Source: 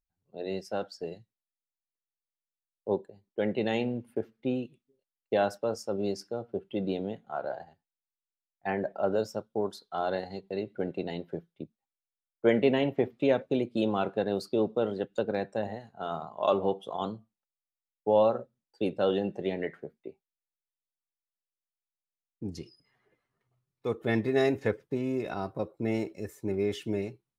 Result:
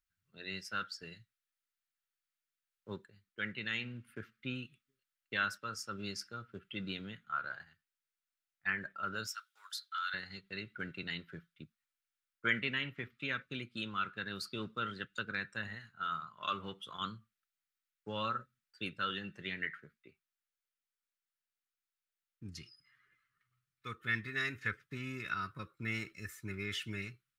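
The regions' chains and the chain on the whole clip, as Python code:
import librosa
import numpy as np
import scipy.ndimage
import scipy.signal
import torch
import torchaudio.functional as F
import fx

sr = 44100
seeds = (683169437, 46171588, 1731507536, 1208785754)

y = fx.chain(x, sr, fx.highpass(hz=1300.0, slope=24),
    fx.high_shelf(hz=2900.0, db=6.5), at=(9.27, 10.14))
y = fx.curve_eq(y, sr, hz=(130.0, 770.0, 1300.0, 6200.0), db=(0, -21, 13, 5))
y = fx.rider(y, sr, range_db=3, speed_s=0.5)
y = F.gain(torch.from_numpy(y), -7.0).numpy()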